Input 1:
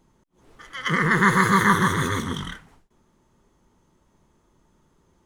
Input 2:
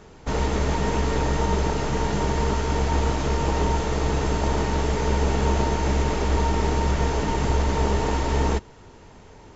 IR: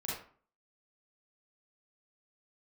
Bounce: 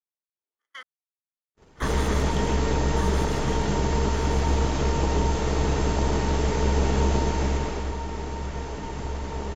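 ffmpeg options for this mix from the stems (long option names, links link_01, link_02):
-filter_complex "[0:a]highpass=390,acompressor=threshold=-23dB:ratio=2,volume=-6dB,asplit=3[link_01][link_02][link_03];[link_01]atrim=end=0.83,asetpts=PTS-STARTPTS,afade=type=out:start_time=0.826:duration=0.004:curve=hsin[link_04];[link_02]atrim=start=0.83:end=1.8,asetpts=PTS-STARTPTS,volume=0[link_05];[link_03]atrim=start=1.8,asetpts=PTS-STARTPTS,afade=type=in:duration=0.004:curve=hsin[link_06];[link_04][link_05][link_06]concat=n=3:v=0:a=1,asplit=2[link_07][link_08];[link_08]volume=-3dB[link_09];[1:a]adelay=1550,afade=type=out:start_time=7.24:duration=0.71:silence=0.334965[link_10];[link_09]aecho=0:1:1164|2328|3492|4656|5820:1|0.36|0.13|0.0467|0.0168[link_11];[link_07][link_10][link_11]amix=inputs=3:normalize=0,acrossover=split=500|3000[link_12][link_13][link_14];[link_13]acompressor=threshold=-29dB:ratio=6[link_15];[link_12][link_15][link_14]amix=inputs=3:normalize=0,agate=range=-38dB:threshold=-45dB:ratio=16:detection=peak"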